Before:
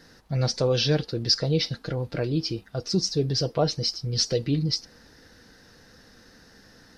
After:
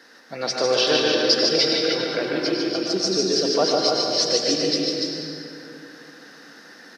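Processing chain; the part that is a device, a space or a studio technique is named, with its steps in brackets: stadium PA (high-pass 250 Hz 24 dB/octave; peaking EQ 1.7 kHz +6.5 dB 2.5 oct; loudspeakers at several distances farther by 51 m -4 dB, 100 m -4 dB; reverberation RT60 2.7 s, pre-delay 89 ms, DRR 1.5 dB)

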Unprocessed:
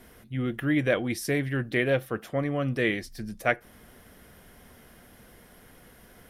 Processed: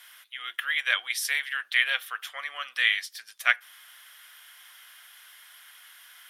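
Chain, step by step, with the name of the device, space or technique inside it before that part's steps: headphones lying on a table (high-pass 1.2 kHz 24 dB/octave; peaking EQ 3.3 kHz +8 dB 0.42 oct); trim +5.5 dB

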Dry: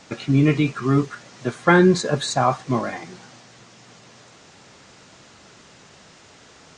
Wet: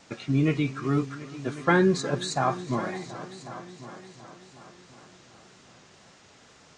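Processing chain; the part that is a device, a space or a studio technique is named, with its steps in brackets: multi-head tape echo (multi-head delay 366 ms, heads all three, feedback 44%, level -19 dB; wow and flutter); trim -6.5 dB

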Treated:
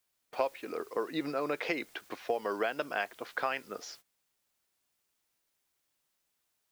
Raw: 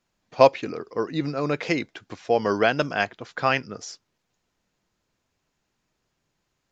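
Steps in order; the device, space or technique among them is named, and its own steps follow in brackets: baby monitor (band-pass 360–3900 Hz; compression 6:1, threshold -29 dBFS, peak gain reduction 18 dB; white noise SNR 23 dB; gate -52 dBFS, range -19 dB)

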